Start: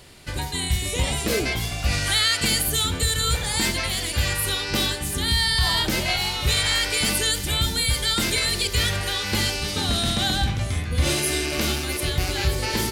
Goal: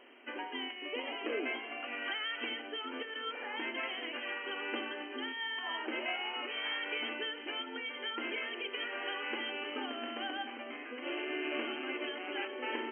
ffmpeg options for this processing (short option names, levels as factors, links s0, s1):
-af "acompressor=threshold=0.0631:ratio=6,afftfilt=real='re*between(b*sr/4096,230,3200)':imag='im*between(b*sr/4096,230,3200)':win_size=4096:overlap=0.75,volume=0.501"